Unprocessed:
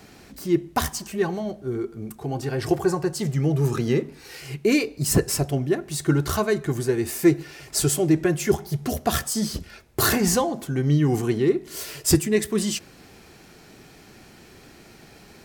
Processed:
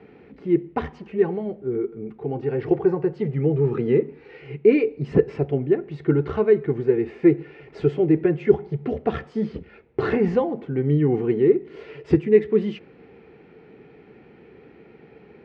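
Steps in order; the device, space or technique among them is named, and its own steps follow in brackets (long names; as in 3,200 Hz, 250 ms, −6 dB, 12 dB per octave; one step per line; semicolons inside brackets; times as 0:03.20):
bass cabinet (loudspeaker in its box 81–2,300 Hz, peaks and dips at 100 Hz −8 dB, 450 Hz +10 dB, 640 Hz −7 dB, 1,100 Hz −7 dB, 1,600 Hz −7 dB)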